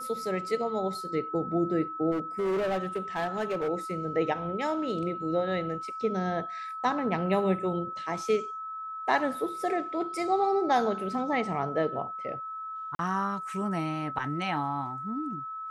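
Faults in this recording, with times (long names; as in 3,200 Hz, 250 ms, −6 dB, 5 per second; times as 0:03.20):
whistle 1,300 Hz −35 dBFS
0:02.11–0:03.69: clipping −25.5 dBFS
0:12.95–0:12.99: drop-out 42 ms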